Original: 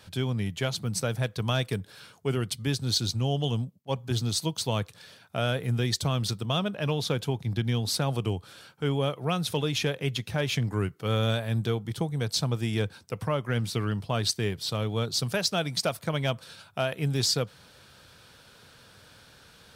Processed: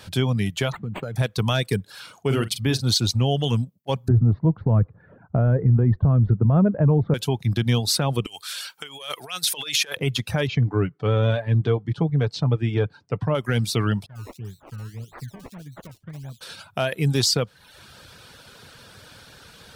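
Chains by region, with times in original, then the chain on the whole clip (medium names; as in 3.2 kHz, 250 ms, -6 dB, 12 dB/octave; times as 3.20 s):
0.72–1.16 s: treble shelf 3.7 kHz -8 dB + compression 8:1, threshold -33 dBFS + decimation joined by straight lines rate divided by 8×
1.89–2.84 s: dynamic bell 7.8 kHz, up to -5 dB, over -48 dBFS, Q 0.73 + doubling 45 ms -8 dB
4.08–7.14 s: low-pass 1.6 kHz 24 dB/octave + tilt EQ -4 dB/octave + tape noise reduction on one side only decoder only
8.26–9.97 s: compressor with a negative ratio -31 dBFS, ratio -0.5 + high-pass 790 Hz 6 dB/octave + tilt shelf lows -8 dB, about 1.4 kHz
10.47–13.35 s: tape spacing loss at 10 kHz 32 dB + comb 6.9 ms, depth 41%
14.06–16.41 s: amplifier tone stack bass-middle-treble 10-0-1 + decimation with a swept rate 22× 1.7 Hz + bands offset in time lows, highs 60 ms, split 2.9 kHz
whole clip: reverb removal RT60 0.61 s; peak limiter -19.5 dBFS; trim +8.5 dB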